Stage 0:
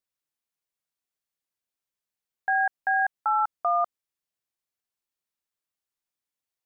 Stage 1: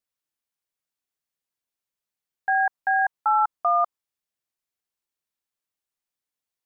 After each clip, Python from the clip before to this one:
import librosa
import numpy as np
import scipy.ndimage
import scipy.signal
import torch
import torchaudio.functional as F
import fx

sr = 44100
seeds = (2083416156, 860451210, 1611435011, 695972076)

y = fx.dynamic_eq(x, sr, hz=1000.0, q=1.9, threshold_db=-39.0, ratio=4.0, max_db=6)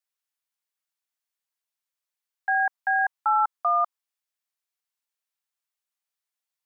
y = scipy.signal.sosfilt(scipy.signal.butter(2, 750.0, 'highpass', fs=sr, output='sos'), x)